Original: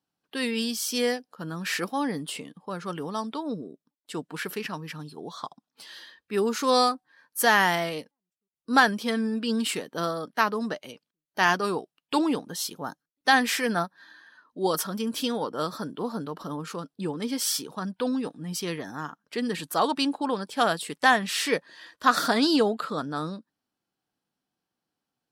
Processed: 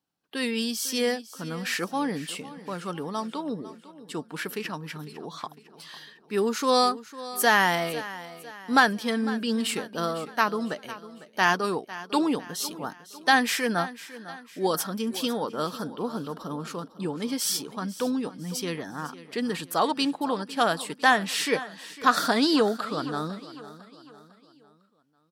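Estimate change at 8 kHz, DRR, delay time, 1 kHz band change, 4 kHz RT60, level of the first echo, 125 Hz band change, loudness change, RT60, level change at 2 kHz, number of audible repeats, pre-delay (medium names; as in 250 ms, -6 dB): 0.0 dB, no reverb, 502 ms, 0.0 dB, no reverb, -16.0 dB, 0.0 dB, 0.0 dB, no reverb, 0.0 dB, 3, no reverb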